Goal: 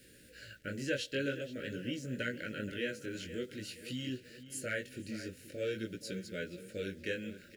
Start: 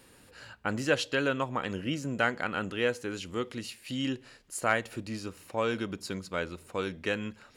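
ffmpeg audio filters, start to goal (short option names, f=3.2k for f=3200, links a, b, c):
-filter_complex "[0:a]asplit=2[a][b];[b]acompressor=threshold=-42dB:ratio=6,volume=1.5dB[c];[a][c]amix=inputs=2:normalize=0,flanger=delay=16:depth=6.3:speed=0.48,acrusher=bits=9:mix=0:aa=0.000001,asuperstop=centerf=940:order=12:qfactor=1.1,asplit=2[d][e];[e]adelay=475,lowpass=f=3.5k:p=1,volume=-13dB,asplit=2[f][g];[g]adelay=475,lowpass=f=3.5k:p=1,volume=0.49,asplit=2[h][i];[i]adelay=475,lowpass=f=3.5k:p=1,volume=0.49,asplit=2[j][k];[k]adelay=475,lowpass=f=3.5k:p=1,volume=0.49,asplit=2[l][m];[m]adelay=475,lowpass=f=3.5k:p=1,volume=0.49[n];[d][f][h][j][l][n]amix=inputs=6:normalize=0,volume=-5.5dB"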